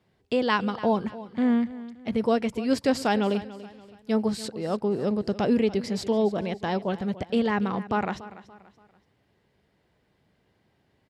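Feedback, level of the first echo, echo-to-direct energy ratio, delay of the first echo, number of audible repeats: 38%, -16.5 dB, -16.0 dB, 287 ms, 3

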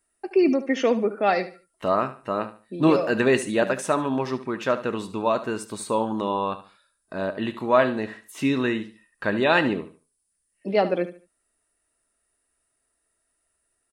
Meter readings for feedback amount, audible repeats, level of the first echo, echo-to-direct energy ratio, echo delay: 28%, 2, -13.5 dB, -13.0 dB, 73 ms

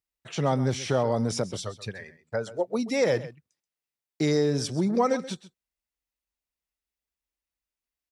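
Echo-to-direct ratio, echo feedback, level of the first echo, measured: -16.0 dB, no regular repeats, -16.0 dB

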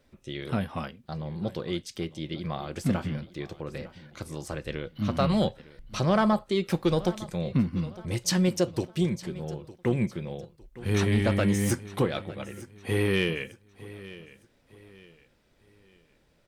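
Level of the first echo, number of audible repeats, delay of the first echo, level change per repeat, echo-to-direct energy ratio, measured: -18.0 dB, 2, 907 ms, -9.0 dB, -17.5 dB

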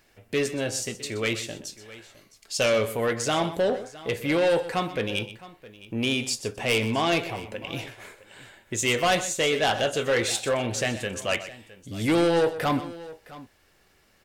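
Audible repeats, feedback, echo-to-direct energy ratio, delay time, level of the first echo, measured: 2, no regular repeats, -12.5 dB, 125 ms, -14.0 dB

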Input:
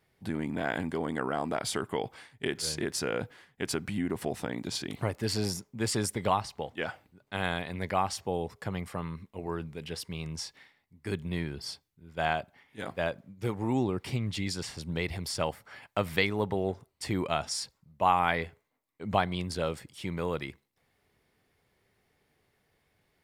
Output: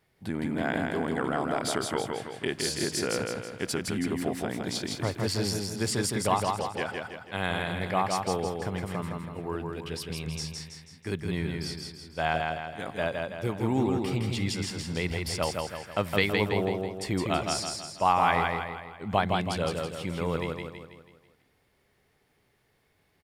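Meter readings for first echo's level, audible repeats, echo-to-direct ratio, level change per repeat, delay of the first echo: -3.5 dB, 5, -2.5 dB, -6.5 dB, 163 ms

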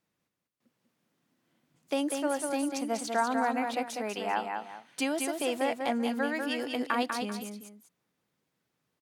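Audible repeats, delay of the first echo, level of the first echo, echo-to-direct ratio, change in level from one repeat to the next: 2, 195 ms, -5.0 dB, -4.5 dB, -10.0 dB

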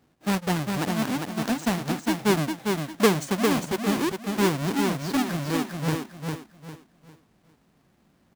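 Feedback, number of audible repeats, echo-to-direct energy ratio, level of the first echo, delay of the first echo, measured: 31%, 3, -4.0 dB, -4.5 dB, 402 ms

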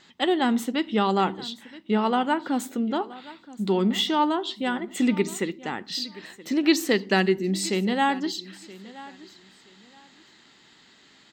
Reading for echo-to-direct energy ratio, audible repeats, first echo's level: -19.0 dB, 2, -19.0 dB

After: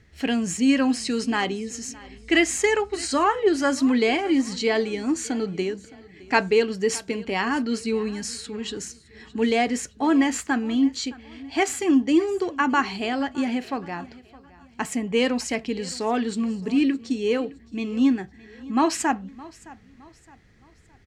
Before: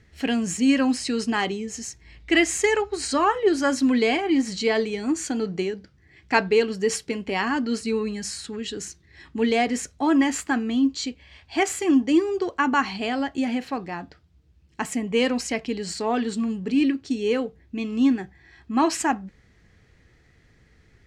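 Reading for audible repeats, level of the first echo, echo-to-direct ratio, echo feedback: 2, -21.0 dB, -20.5 dB, 39%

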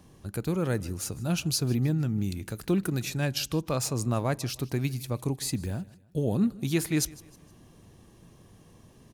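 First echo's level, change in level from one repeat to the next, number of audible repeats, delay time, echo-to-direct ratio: -21.5 dB, -8.0 dB, 2, 155 ms, -21.0 dB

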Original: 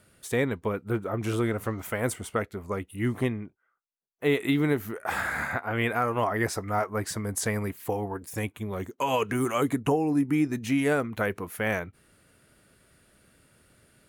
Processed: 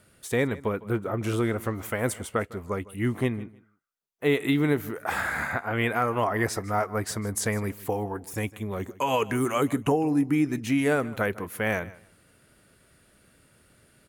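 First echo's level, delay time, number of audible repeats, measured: -19.5 dB, 155 ms, 2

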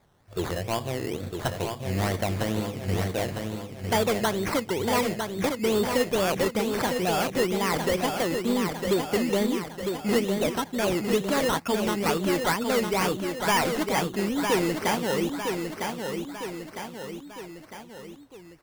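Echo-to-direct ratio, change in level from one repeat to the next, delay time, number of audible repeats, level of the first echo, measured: -4.0 dB, -5.5 dB, 955 ms, 4, -5.5 dB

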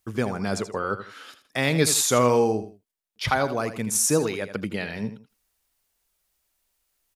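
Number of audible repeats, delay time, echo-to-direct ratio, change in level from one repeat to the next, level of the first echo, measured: 2, 81 ms, -11.0 dB, -11.0 dB, -11.5 dB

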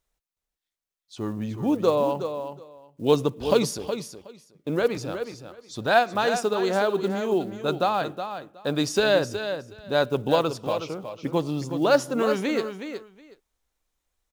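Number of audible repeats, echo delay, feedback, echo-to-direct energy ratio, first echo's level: 2, 368 ms, 16%, -9.0 dB, -9.0 dB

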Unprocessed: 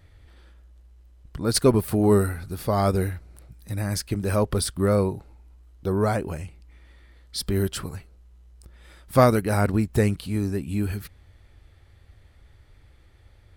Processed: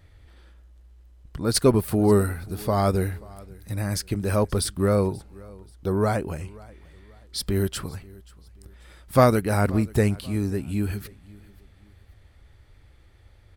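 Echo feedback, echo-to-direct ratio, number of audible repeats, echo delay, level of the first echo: 36%, -22.5 dB, 2, 533 ms, -23.0 dB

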